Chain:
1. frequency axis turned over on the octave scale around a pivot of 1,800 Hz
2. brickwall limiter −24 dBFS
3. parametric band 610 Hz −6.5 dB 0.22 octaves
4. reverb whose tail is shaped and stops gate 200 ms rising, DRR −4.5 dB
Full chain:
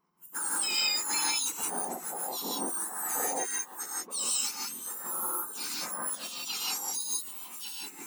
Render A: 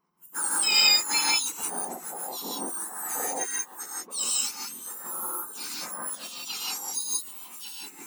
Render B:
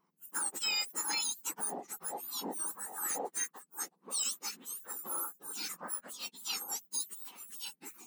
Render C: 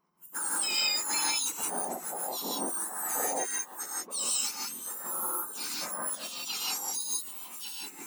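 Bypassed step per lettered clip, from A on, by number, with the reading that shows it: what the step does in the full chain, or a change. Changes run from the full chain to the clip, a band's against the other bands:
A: 2, change in crest factor +4.5 dB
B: 4, change in crest factor −2.5 dB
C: 3, 500 Hz band +1.5 dB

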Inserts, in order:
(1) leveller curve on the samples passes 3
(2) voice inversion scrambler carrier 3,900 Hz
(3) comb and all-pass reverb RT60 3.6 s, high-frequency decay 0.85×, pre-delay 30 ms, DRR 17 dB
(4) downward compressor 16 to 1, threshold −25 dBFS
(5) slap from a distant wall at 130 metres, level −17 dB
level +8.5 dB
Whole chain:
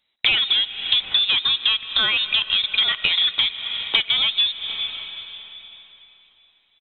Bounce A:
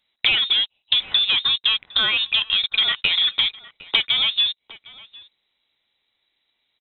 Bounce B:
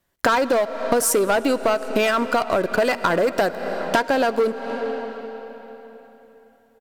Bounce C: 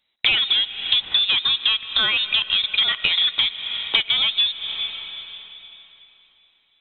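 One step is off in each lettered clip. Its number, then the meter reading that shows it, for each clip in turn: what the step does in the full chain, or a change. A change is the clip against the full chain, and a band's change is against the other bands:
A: 3, change in momentary loudness spread −8 LU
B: 2, 4 kHz band −32.5 dB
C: 5, change in momentary loudness spread −3 LU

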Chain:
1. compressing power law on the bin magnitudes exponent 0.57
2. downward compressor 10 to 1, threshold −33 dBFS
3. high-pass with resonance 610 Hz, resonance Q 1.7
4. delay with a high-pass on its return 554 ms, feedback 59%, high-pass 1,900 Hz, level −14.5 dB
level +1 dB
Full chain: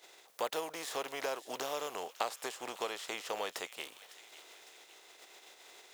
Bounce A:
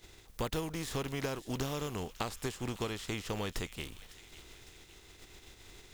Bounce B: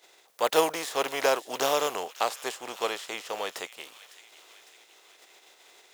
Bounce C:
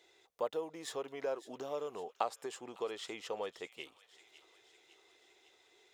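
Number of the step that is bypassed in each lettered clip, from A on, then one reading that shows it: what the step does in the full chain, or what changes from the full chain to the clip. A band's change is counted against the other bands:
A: 3, 125 Hz band +26.0 dB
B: 2, average gain reduction 5.0 dB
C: 1, 125 Hz band +6.5 dB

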